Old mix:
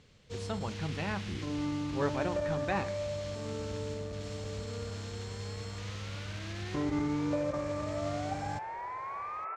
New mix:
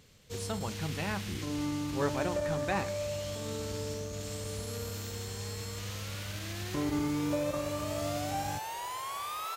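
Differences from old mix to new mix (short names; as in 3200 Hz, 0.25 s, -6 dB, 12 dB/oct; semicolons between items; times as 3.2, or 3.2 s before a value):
second sound: remove steep low-pass 2400 Hz 96 dB/oct; master: remove air absorption 94 m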